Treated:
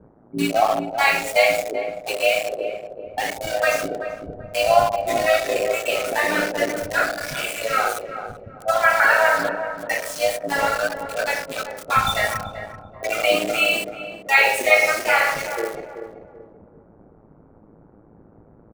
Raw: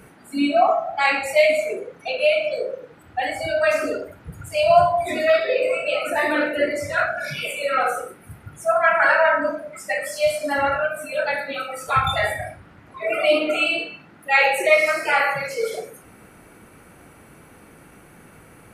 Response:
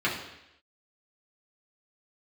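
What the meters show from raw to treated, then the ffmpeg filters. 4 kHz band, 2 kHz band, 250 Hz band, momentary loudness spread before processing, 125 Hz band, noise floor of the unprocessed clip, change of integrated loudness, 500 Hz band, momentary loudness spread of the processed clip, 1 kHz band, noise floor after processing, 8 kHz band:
+2.5 dB, +1.5 dB, −1.5 dB, 14 LU, 0.0 dB, −49 dBFS, 0.0 dB, −1.5 dB, 16 LU, 0.0 dB, −51 dBFS, +6.0 dB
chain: -filter_complex "[0:a]adynamicequalizer=threshold=0.00282:dfrequency=6300:dqfactor=3:tfrequency=6300:tqfactor=3:attack=5:release=100:ratio=0.375:range=3.5:mode=boostabove:tftype=bell,acrossover=split=1000[link_01][link_02];[link_01]tremolo=f=110:d=0.947[link_03];[link_02]aeval=exprs='val(0)*gte(abs(val(0)),0.0398)':channel_layout=same[link_04];[link_03][link_04]amix=inputs=2:normalize=0,asplit=2[link_05][link_06];[link_06]adelay=384,lowpass=frequency=870:poles=1,volume=-7dB,asplit=2[link_07][link_08];[link_08]adelay=384,lowpass=frequency=870:poles=1,volume=0.39,asplit=2[link_09][link_10];[link_10]adelay=384,lowpass=frequency=870:poles=1,volume=0.39,asplit=2[link_11][link_12];[link_12]adelay=384,lowpass=frequency=870:poles=1,volume=0.39,asplit=2[link_13][link_14];[link_14]adelay=384,lowpass=frequency=870:poles=1,volume=0.39[link_15];[link_05][link_07][link_09][link_11][link_13][link_15]amix=inputs=6:normalize=0,volume=2dB"

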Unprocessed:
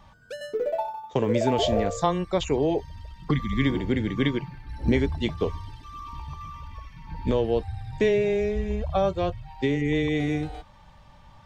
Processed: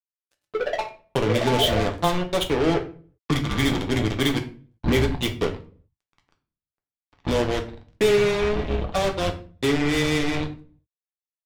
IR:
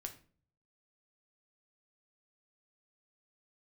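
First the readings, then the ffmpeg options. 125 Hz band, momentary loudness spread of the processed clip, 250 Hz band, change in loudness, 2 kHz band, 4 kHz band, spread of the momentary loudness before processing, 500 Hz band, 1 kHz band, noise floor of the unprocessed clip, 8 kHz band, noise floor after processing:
+1.5 dB, 11 LU, +1.0 dB, +2.5 dB, +6.0 dB, +8.5 dB, 17 LU, +1.5 dB, +2.0 dB, −52 dBFS, can't be measured, below −85 dBFS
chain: -filter_complex "[0:a]highshelf=frequency=4800:width_type=q:width=3:gain=-10,acrusher=bits=3:mix=0:aa=0.5[link_01];[1:a]atrim=start_sample=2205,afade=type=out:start_time=0.45:duration=0.01,atrim=end_sample=20286[link_02];[link_01][link_02]afir=irnorm=-1:irlink=0,volume=4.5dB"

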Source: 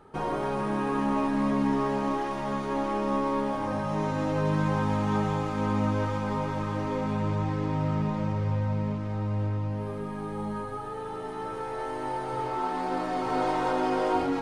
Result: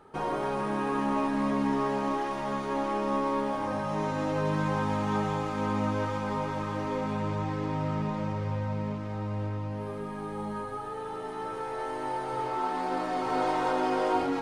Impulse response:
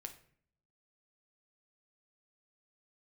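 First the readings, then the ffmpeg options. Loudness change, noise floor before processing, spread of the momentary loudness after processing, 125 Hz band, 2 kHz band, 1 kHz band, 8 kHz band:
−1.5 dB, −35 dBFS, 8 LU, −4.5 dB, 0.0 dB, −0.5 dB, can't be measured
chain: -af "lowshelf=frequency=200:gain=-6"

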